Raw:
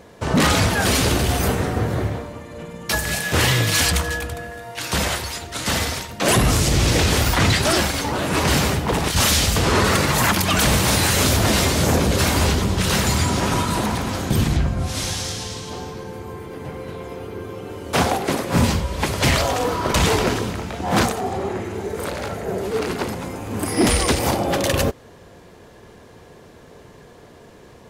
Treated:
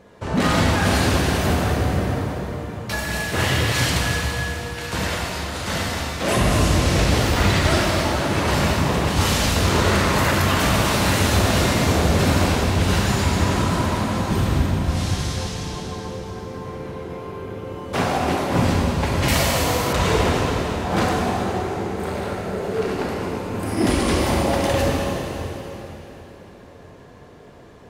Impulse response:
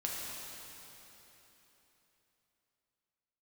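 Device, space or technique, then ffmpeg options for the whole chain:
swimming-pool hall: -filter_complex "[1:a]atrim=start_sample=2205[a];[0:a][a]afir=irnorm=-1:irlink=0,highshelf=f=4.4k:g=-7.5,asettb=1/sr,asplit=3[b][c][d];[b]atrim=end=19.284[e];[c]atrim=start=19.28:end=19.93,asetpts=PTS-STARTPTS,afade=t=in:d=0.004:c=qsin,afade=t=out:st=0.646:d=0.004:c=qsin,aemphasis=mode=production:type=50fm[f];[d]atrim=start=19.926[g];[e][f]acrossfade=d=0.004:c1=hsin:c2=qsin[h];[h][g]acrossfade=d=0.004:c1=qsin:c2=hsin,volume=-3dB"

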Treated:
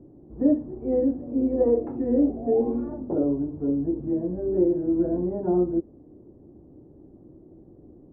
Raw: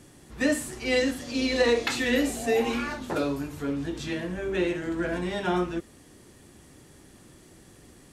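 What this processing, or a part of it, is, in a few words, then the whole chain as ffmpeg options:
under water: -af "lowpass=f=670:w=0.5412,lowpass=f=670:w=1.3066,equalizer=f=320:t=o:w=0.55:g=7,volume=1dB"

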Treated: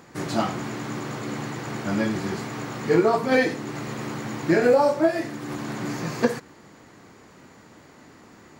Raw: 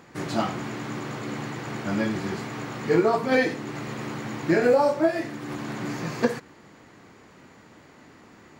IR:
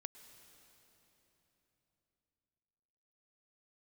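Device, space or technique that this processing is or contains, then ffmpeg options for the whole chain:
exciter from parts: -filter_complex "[0:a]asplit=2[a][b];[b]highpass=f=3k:p=1,asoftclip=type=tanh:threshold=-38dB,highpass=2.7k,volume=-5dB[c];[a][c]amix=inputs=2:normalize=0,volume=1.5dB"

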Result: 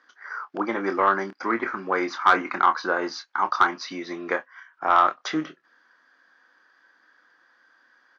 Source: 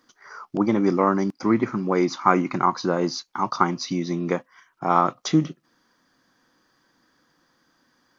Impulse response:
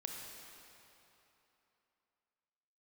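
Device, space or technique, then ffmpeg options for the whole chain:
intercom: -filter_complex "[0:a]highpass=480,lowpass=4k,equalizer=f=1.6k:t=o:w=0.52:g=11,asoftclip=type=tanh:threshold=-5.5dB,asplit=2[a][b];[b]adelay=26,volume=-9dB[c];[a][c]amix=inputs=2:normalize=0"

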